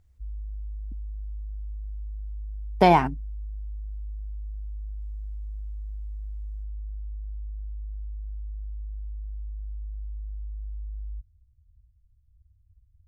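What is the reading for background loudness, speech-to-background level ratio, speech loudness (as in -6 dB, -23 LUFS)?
-38.5 LUFS, 18.0 dB, -20.5 LUFS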